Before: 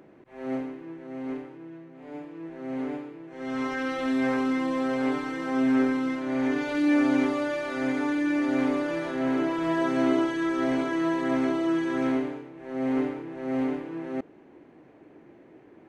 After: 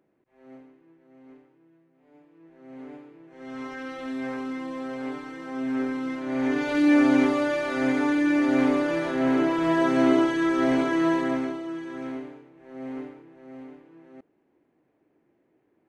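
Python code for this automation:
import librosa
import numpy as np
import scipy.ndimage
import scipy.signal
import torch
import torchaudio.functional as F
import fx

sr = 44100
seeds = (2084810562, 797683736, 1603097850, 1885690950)

y = fx.gain(x, sr, db=fx.line((2.13, -17.0), (3.21, -6.5), (5.58, -6.5), (6.78, 3.5), (11.16, 3.5), (11.64, -8.5), (12.85, -8.5), (13.65, -16.0)))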